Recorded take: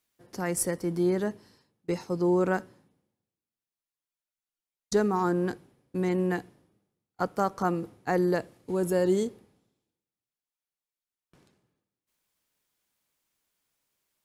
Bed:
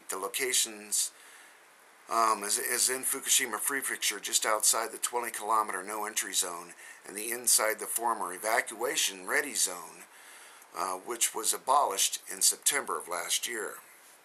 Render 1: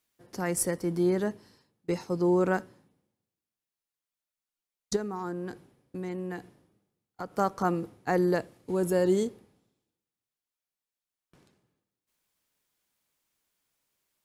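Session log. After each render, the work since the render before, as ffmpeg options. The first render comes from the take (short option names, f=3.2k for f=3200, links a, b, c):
-filter_complex "[0:a]asplit=3[a][b][c];[a]afade=t=out:st=4.95:d=0.02[d];[b]acompressor=threshold=-38dB:ratio=2:attack=3.2:release=140:knee=1:detection=peak,afade=t=in:st=4.95:d=0.02,afade=t=out:st=7.33:d=0.02[e];[c]afade=t=in:st=7.33:d=0.02[f];[d][e][f]amix=inputs=3:normalize=0"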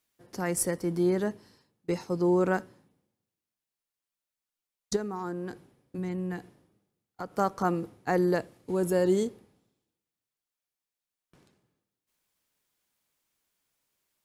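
-filter_complex "[0:a]asplit=3[a][b][c];[a]afade=t=out:st=5.97:d=0.02[d];[b]asubboost=boost=2.5:cutoff=220,afade=t=in:st=5.97:d=0.02,afade=t=out:st=6.37:d=0.02[e];[c]afade=t=in:st=6.37:d=0.02[f];[d][e][f]amix=inputs=3:normalize=0"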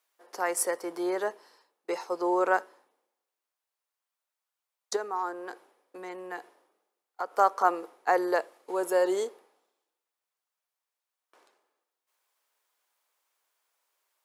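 -af "highpass=f=410:w=0.5412,highpass=f=410:w=1.3066,equalizer=f=1k:w=0.9:g=7.5"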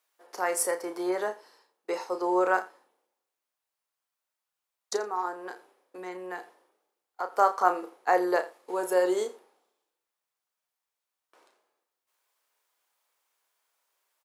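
-filter_complex "[0:a]asplit=2[a][b];[b]adelay=33,volume=-8dB[c];[a][c]amix=inputs=2:normalize=0,aecho=1:1:84:0.106"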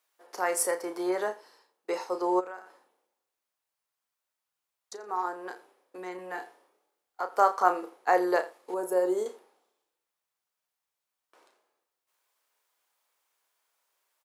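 -filter_complex "[0:a]asplit=3[a][b][c];[a]afade=t=out:st=2.39:d=0.02[d];[b]acompressor=threshold=-43dB:ratio=3:attack=3.2:release=140:knee=1:detection=peak,afade=t=in:st=2.39:d=0.02,afade=t=out:st=5.08:d=0.02[e];[c]afade=t=in:st=5.08:d=0.02[f];[d][e][f]amix=inputs=3:normalize=0,asettb=1/sr,asplit=3[g][h][i];[g]atrim=end=6.164[j];[h]atrim=start=6.16:end=7.24,asetpts=PTS-STARTPTS,afade=t=in:d=0.004:c=qsin,afade=t=out:st=1.076:d=0.004:c=qsin,asplit=2[k][l];[l]adelay=26,volume=-4.5dB[m];[k][m]amix=inputs=2:normalize=0,atrim=end_sample=47628[n];[i]atrim=start=7.236[o];[j][n]acrossfade=d=0.004:c1=hsin:c2=qsin[p];[p][o]acrossfade=d=0.004:c1=qsin:c2=hsin,asettb=1/sr,asplit=3[q][r][s];[q]atrim=end=8.744[t];[r]atrim=start=8.74:end=9.26,asetpts=PTS-STARTPTS,afade=t=in:d=0.004:c=qsin,afade=t=out:st=0.516:d=0.004:c=qsin,equalizer=f=3.1k:t=o:w=2.6:g=-12.5[u];[s]atrim=start=9.256[v];[t][u]acrossfade=d=0.004:c1=hsin:c2=qsin[w];[w][v]acrossfade=d=0.004:c1=qsin:c2=hsin"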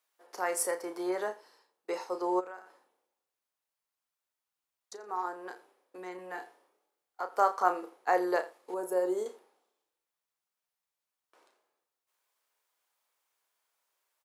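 -af "volume=-3.5dB"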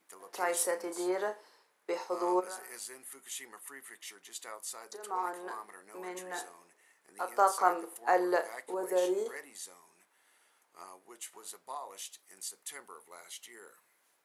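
-filter_complex "[1:a]volume=-17dB[a];[0:a][a]amix=inputs=2:normalize=0"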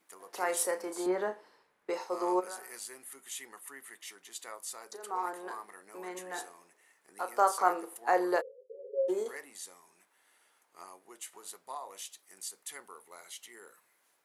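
-filter_complex "[0:a]asettb=1/sr,asplit=3[a][b][c];[a]atrim=end=1.064[d];[b]atrim=start=1.06:end=1.9,asetpts=PTS-STARTPTS,afade=t=in:d=0.004:c=qsin,afade=t=out:st=0.836:d=0.004:c=qsin,bass=f=250:g=11,treble=f=4k:g=-8[e];[c]atrim=start=1.896[f];[d][e]acrossfade=d=0.004:c1=hsin:c2=qsin[g];[g][f]acrossfade=d=0.004:c1=qsin:c2=hsin,asplit=3[h][i][j];[h]afade=t=out:st=8.4:d=0.02[k];[i]asuperpass=centerf=470:order=20:qfactor=3.1,afade=t=in:st=8.4:d=0.02,afade=t=out:st=9.08:d=0.02[l];[j]afade=t=in:st=9.08:d=0.02[m];[k][l][m]amix=inputs=3:normalize=0"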